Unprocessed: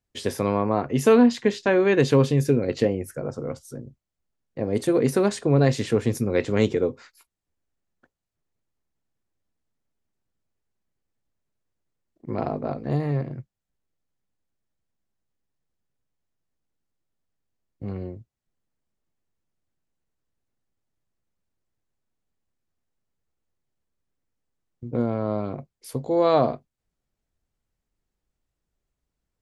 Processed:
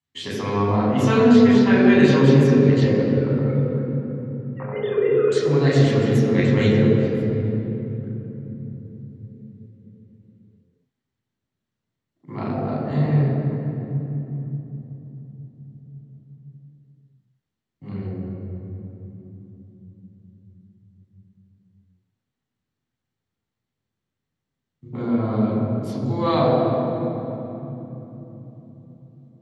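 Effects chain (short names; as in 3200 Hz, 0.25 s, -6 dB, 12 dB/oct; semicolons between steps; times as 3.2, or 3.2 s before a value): 2.87–5.32 sine-wave speech; high shelf 2100 Hz +9.5 dB; reverb RT60 3.5 s, pre-delay 7 ms, DRR -5.5 dB; gain -15 dB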